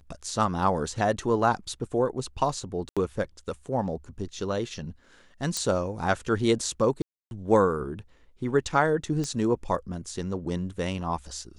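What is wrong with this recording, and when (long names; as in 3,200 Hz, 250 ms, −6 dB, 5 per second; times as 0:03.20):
0:02.89–0:02.97: drop-out 76 ms
0:05.57: click −14 dBFS
0:07.02–0:07.31: drop-out 291 ms
0:09.24: click −19 dBFS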